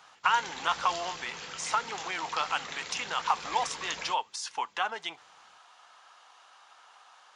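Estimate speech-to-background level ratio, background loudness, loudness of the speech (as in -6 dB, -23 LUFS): 7.5 dB, -39.5 LUFS, -32.0 LUFS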